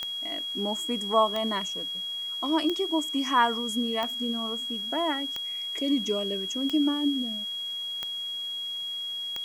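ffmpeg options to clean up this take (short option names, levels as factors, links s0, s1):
-af "adeclick=t=4,bandreject=f=3300:w=30,afwtdn=0.0022"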